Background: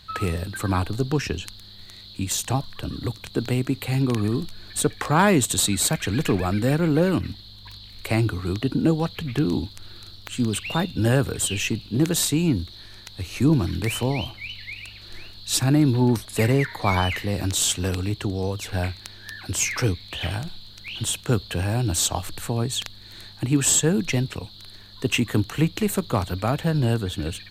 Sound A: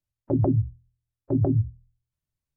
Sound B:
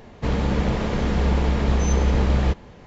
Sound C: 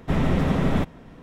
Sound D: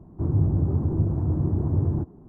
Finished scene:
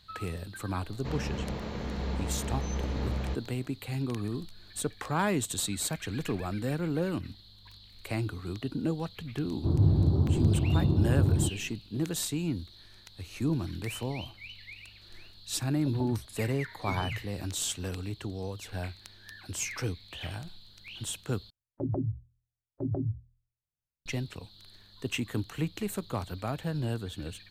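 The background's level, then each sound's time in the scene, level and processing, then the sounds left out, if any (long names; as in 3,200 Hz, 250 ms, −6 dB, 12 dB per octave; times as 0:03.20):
background −10.5 dB
0:00.82: mix in B −12.5 dB + high-pass filter 43 Hz
0:09.45: mix in D −1.5 dB
0:15.56: mix in A −16.5 dB
0:21.50: overwrite with A −9.5 dB
not used: C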